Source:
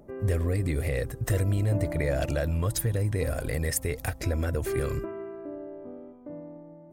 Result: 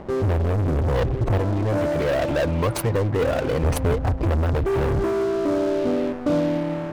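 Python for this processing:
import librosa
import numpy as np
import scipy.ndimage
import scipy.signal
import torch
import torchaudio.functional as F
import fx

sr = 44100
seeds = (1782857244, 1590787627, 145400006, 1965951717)

y = scipy.signal.medfilt(x, 25)
y = fx.highpass(y, sr, hz=480.0, slope=6, at=(1.38, 3.64))
y = fx.spec_gate(y, sr, threshold_db=-30, keep='strong')
y = fx.leveller(y, sr, passes=5)
y = fx.rider(y, sr, range_db=4, speed_s=0.5)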